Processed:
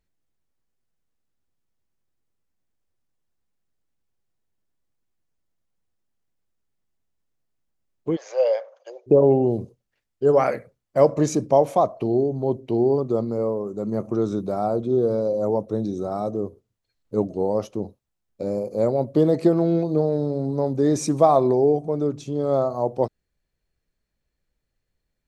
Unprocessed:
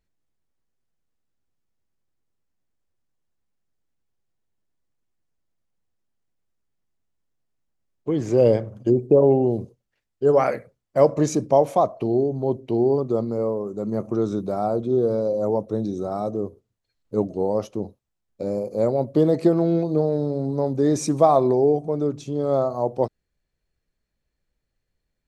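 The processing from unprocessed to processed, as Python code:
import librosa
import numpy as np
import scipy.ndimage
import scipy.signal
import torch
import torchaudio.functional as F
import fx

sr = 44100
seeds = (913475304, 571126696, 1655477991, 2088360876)

y = fx.cheby1_bandpass(x, sr, low_hz=520.0, high_hz=6600.0, order=5, at=(8.15, 9.06), fade=0.02)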